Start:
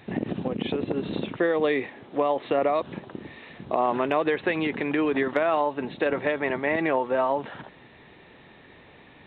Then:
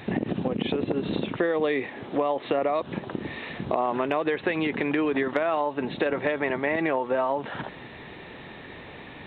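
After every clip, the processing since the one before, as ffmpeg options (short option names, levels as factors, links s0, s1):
-af "acompressor=threshold=0.0178:ratio=2.5,volume=2.66"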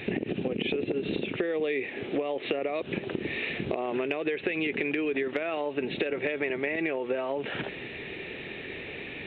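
-af "equalizer=f=400:t=o:w=0.67:g=8,equalizer=f=1000:t=o:w=0.67:g=-9,equalizer=f=2500:t=o:w=0.67:g=12,acompressor=threshold=0.0562:ratio=6,volume=0.891"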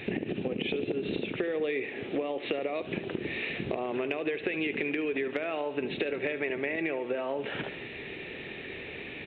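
-af "aecho=1:1:73|146|219|292|365|438:0.2|0.112|0.0626|0.035|0.0196|0.011,volume=0.794"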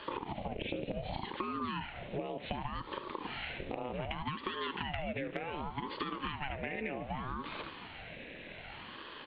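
-af "aeval=exprs='val(0)*sin(2*PI*430*n/s+430*0.75/0.66*sin(2*PI*0.66*n/s))':c=same,volume=0.631"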